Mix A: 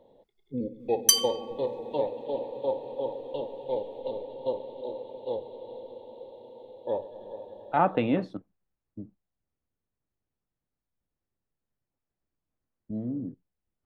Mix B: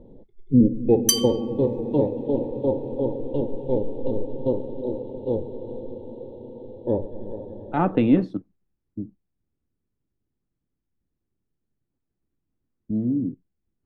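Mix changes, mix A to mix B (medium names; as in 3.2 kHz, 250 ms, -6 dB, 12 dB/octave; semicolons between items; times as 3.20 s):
first sound: add tilt EQ -4 dB/octave; master: add resonant low shelf 450 Hz +7.5 dB, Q 1.5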